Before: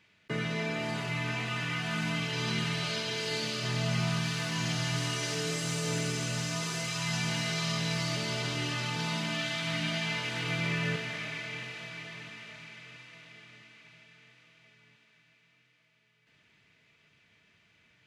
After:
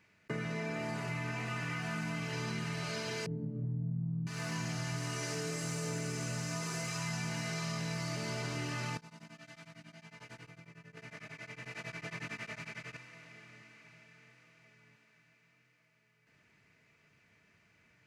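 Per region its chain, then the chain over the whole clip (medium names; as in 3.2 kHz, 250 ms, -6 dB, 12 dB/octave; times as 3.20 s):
3.26–4.27 s: resonant low-pass 220 Hz, resonance Q 2.3 + comb 7 ms, depth 55%
8.97–12.97 s: compressor with a negative ratio -45 dBFS + tremolo of two beating tones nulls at 11 Hz
whole clip: peaking EQ 3.4 kHz -11.5 dB 0.63 oct; compression, threshold -34 dBFS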